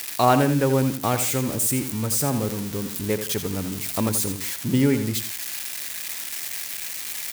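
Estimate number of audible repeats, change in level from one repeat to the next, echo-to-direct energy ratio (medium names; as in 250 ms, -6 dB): 2, -9.0 dB, -9.0 dB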